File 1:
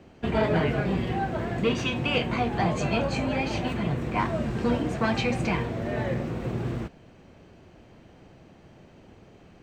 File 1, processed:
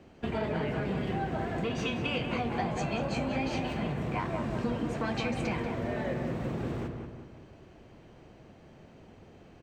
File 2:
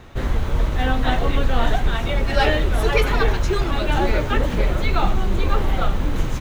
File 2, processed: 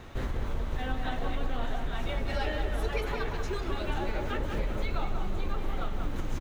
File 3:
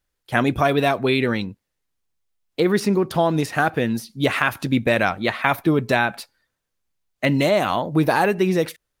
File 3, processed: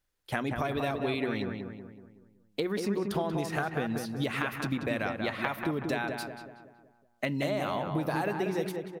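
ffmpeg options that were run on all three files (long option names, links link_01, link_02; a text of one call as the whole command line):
ffmpeg -i in.wav -filter_complex "[0:a]bandreject=frequency=60:width_type=h:width=6,bandreject=frequency=120:width_type=h:width=6,bandreject=frequency=180:width_type=h:width=6,acompressor=threshold=-26dB:ratio=6,asplit=2[link_01][link_02];[link_02]adelay=187,lowpass=frequency=2000:poles=1,volume=-4.5dB,asplit=2[link_03][link_04];[link_04]adelay=187,lowpass=frequency=2000:poles=1,volume=0.5,asplit=2[link_05][link_06];[link_06]adelay=187,lowpass=frequency=2000:poles=1,volume=0.5,asplit=2[link_07][link_08];[link_08]adelay=187,lowpass=frequency=2000:poles=1,volume=0.5,asplit=2[link_09][link_10];[link_10]adelay=187,lowpass=frequency=2000:poles=1,volume=0.5,asplit=2[link_11][link_12];[link_12]adelay=187,lowpass=frequency=2000:poles=1,volume=0.5[link_13];[link_03][link_05][link_07][link_09][link_11][link_13]amix=inputs=6:normalize=0[link_14];[link_01][link_14]amix=inputs=2:normalize=0,volume=-3dB" out.wav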